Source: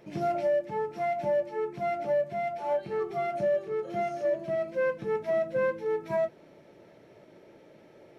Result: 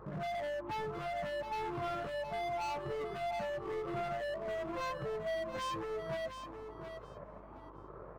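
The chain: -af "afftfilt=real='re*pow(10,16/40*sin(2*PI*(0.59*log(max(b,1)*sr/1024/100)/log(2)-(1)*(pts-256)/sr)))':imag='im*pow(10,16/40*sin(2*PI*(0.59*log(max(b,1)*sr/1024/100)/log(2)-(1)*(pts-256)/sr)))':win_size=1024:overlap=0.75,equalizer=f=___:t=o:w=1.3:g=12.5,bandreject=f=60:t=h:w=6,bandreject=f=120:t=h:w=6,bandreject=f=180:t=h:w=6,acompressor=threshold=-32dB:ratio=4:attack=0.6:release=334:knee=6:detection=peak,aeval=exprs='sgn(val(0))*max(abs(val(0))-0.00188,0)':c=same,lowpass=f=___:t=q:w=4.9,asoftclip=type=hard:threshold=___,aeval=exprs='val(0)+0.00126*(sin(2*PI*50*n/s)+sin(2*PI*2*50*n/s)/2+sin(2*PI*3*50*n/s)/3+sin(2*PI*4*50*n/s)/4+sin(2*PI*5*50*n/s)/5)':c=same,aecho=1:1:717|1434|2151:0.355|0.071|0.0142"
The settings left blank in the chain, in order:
90, 1100, -36.5dB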